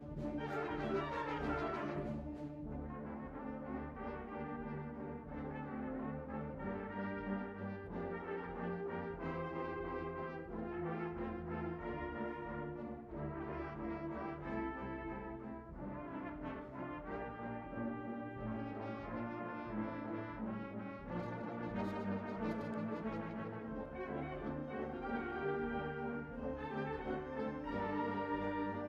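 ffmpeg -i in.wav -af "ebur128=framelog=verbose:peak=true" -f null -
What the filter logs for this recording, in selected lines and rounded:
Integrated loudness:
  I:         -43.2 LUFS
  Threshold: -53.2 LUFS
Loudness range:
  LRA:         3.6 LU
  Threshold: -63.5 LUFS
  LRA low:   -45.3 LUFS
  LRA high:  -41.7 LUFS
True peak:
  Peak:      -27.0 dBFS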